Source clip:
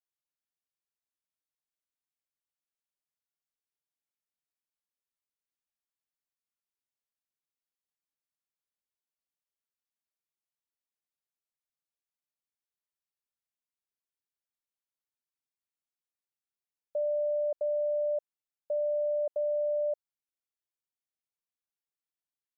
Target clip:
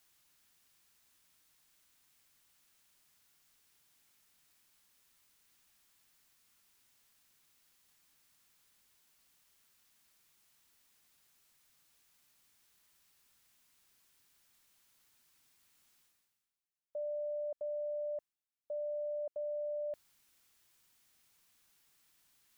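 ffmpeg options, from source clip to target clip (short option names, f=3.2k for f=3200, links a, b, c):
-af "areverse,acompressor=mode=upward:threshold=-47dB:ratio=2.5,areverse,equalizer=f=540:w=0.98:g=-6.5,volume=-2.5dB"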